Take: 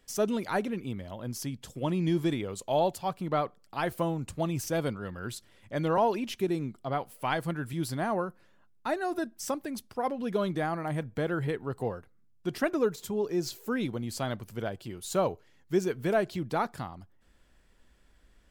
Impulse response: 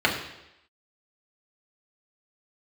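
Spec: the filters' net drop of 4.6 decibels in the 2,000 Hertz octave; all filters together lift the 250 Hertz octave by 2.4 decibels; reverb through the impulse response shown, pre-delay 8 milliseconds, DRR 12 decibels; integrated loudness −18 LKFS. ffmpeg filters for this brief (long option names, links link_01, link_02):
-filter_complex "[0:a]equalizer=frequency=250:width_type=o:gain=3.5,equalizer=frequency=2000:width_type=o:gain=-6.5,asplit=2[link_01][link_02];[1:a]atrim=start_sample=2205,adelay=8[link_03];[link_02][link_03]afir=irnorm=-1:irlink=0,volume=-29dB[link_04];[link_01][link_04]amix=inputs=2:normalize=0,volume=13dB"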